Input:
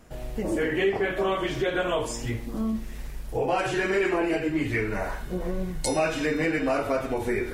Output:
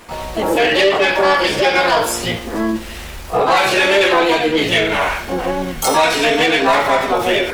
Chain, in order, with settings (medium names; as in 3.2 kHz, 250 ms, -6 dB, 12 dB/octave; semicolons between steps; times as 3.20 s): overdrive pedal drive 16 dB, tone 5.7 kHz, clips at -12 dBFS; harmony voices +7 st 0 dB; trim +4.5 dB